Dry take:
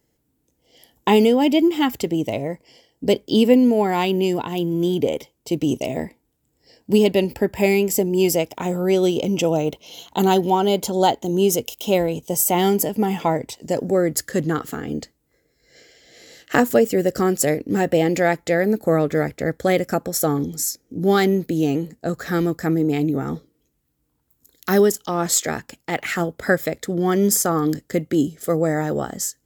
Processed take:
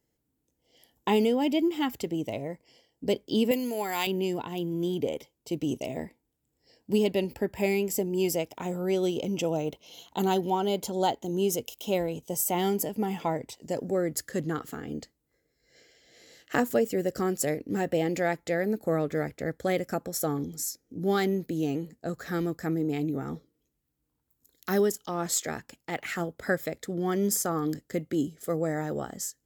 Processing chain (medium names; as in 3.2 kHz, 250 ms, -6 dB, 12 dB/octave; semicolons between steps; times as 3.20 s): 3.51–4.07 s: tilt EQ +4 dB/octave; trim -9 dB